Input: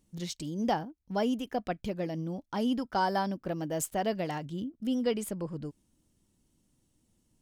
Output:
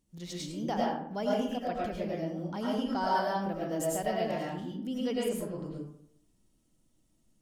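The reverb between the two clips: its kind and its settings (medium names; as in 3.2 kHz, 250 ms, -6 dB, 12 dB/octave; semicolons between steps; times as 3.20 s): algorithmic reverb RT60 0.69 s, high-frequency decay 0.55×, pre-delay 65 ms, DRR -5 dB; trim -6 dB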